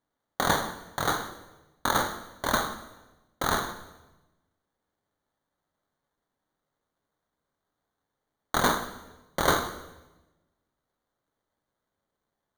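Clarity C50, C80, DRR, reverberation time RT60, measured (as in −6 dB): 10.5 dB, 12.5 dB, 7.0 dB, 1.1 s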